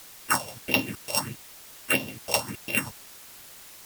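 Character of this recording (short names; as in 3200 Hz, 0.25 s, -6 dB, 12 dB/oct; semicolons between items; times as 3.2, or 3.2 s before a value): a buzz of ramps at a fixed pitch in blocks of 16 samples; phasing stages 4, 1.6 Hz, lowest notch 260–1500 Hz; a quantiser's noise floor 8-bit, dither triangular; AAC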